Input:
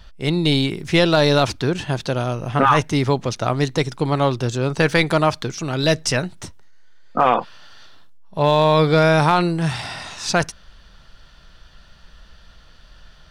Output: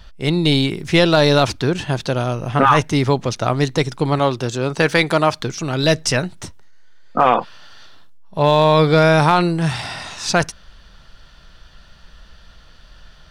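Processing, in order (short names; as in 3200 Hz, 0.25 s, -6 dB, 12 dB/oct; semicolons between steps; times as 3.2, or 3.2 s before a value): 4.19–5.4 low shelf 110 Hz -10 dB; gain +2 dB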